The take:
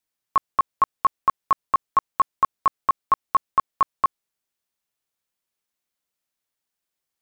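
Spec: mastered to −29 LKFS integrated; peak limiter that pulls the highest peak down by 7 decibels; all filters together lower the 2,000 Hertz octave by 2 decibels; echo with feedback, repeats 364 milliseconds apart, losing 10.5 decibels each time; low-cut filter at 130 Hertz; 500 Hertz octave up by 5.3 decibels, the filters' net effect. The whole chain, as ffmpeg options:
ffmpeg -i in.wav -af "highpass=130,equalizer=frequency=500:width_type=o:gain=7,equalizer=frequency=2000:width_type=o:gain=-3.5,alimiter=limit=-15dB:level=0:latency=1,aecho=1:1:364|728|1092:0.299|0.0896|0.0269" out.wav

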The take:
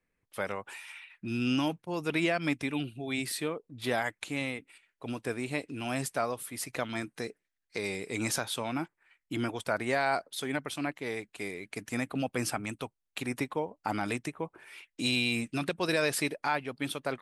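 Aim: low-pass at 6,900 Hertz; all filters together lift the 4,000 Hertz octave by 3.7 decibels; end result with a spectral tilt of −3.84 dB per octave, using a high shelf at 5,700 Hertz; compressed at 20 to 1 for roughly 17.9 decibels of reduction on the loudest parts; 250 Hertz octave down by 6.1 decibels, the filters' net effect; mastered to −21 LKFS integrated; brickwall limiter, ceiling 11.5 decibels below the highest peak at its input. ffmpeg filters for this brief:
ffmpeg -i in.wav -af "lowpass=6900,equalizer=frequency=250:width_type=o:gain=-7.5,equalizer=frequency=4000:width_type=o:gain=7,highshelf=frequency=5700:gain=-6.5,acompressor=threshold=-41dB:ratio=20,volume=27dB,alimiter=limit=-8.5dB:level=0:latency=1" out.wav

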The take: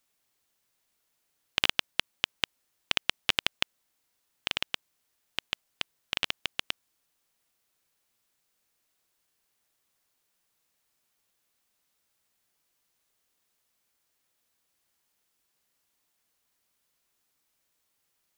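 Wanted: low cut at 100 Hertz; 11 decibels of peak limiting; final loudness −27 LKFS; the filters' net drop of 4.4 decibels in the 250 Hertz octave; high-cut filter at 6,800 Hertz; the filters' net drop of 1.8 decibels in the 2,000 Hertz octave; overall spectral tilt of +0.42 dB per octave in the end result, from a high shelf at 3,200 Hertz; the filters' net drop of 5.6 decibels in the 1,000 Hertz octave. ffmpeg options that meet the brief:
ffmpeg -i in.wav -af "highpass=100,lowpass=6800,equalizer=frequency=250:width_type=o:gain=-5.5,equalizer=frequency=1000:width_type=o:gain=-6.5,equalizer=frequency=2000:width_type=o:gain=-5,highshelf=frequency=3200:gain=8,volume=13dB,alimiter=limit=-1dB:level=0:latency=1" out.wav

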